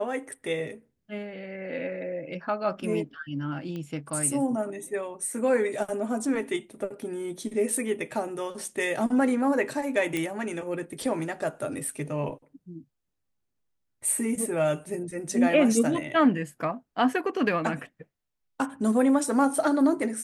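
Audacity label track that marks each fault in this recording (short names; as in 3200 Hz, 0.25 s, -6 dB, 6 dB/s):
3.760000	3.760000	pop -25 dBFS
10.170000	10.170000	pop -15 dBFS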